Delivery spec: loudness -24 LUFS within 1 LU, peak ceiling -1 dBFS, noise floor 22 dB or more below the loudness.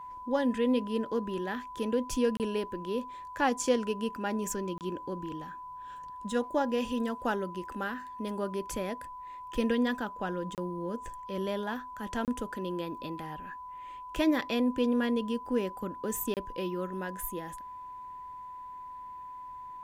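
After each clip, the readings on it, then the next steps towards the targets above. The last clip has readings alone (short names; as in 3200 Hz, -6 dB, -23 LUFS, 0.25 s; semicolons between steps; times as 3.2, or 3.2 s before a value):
dropouts 5; longest dropout 28 ms; steady tone 1000 Hz; tone level -41 dBFS; loudness -33.0 LUFS; peak -14.5 dBFS; loudness target -24.0 LUFS
-> interpolate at 2.37/4.78/10.55/12.25/16.34, 28 ms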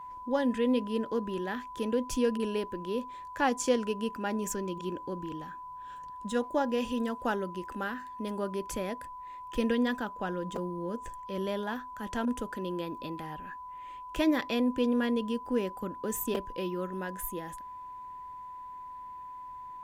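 dropouts 0; steady tone 1000 Hz; tone level -41 dBFS
-> notch 1000 Hz, Q 30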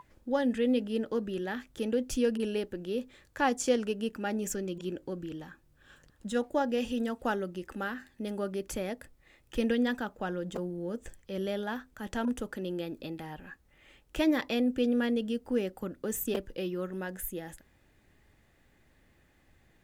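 steady tone none; loudness -33.0 LUFS; peak -14.5 dBFS; loudness target -24.0 LUFS
-> gain +9 dB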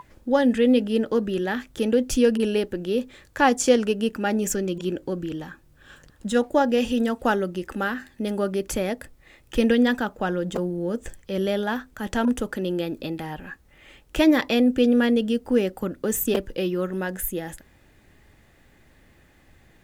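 loudness -24.0 LUFS; peak -5.5 dBFS; noise floor -57 dBFS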